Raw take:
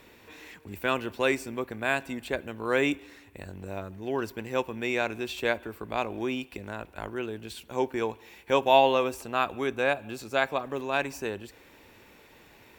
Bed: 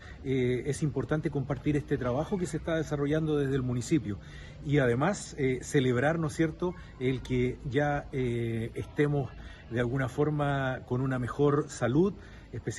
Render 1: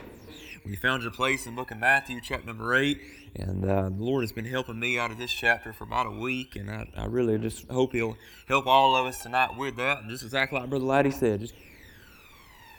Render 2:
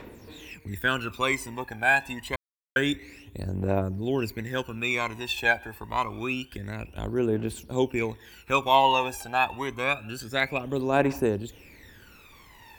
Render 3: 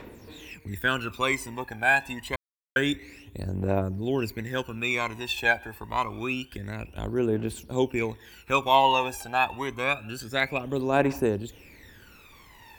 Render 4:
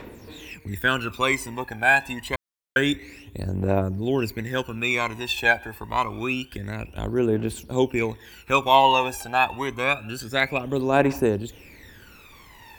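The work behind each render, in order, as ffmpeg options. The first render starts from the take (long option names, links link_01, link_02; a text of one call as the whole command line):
ffmpeg -i in.wav -af "aphaser=in_gain=1:out_gain=1:delay=1.3:decay=0.78:speed=0.27:type=triangular" out.wav
ffmpeg -i in.wav -filter_complex "[0:a]asplit=3[link_01][link_02][link_03];[link_01]atrim=end=2.36,asetpts=PTS-STARTPTS,afade=type=out:start_time=2.356:duration=0.004:curve=hsin[link_04];[link_02]atrim=start=2.36:end=2.76,asetpts=PTS-STARTPTS,volume=0[link_05];[link_03]atrim=start=2.76,asetpts=PTS-STARTPTS,afade=type=in:duration=0.004:curve=hsin[link_06];[link_04][link_05][link_06]concat=n=3:v=0:a=1" out.wav
ffmpeg -i in.wav -af anull out.wav
ffmpeg -i in.wav -af "volume=3.5dB" out.wav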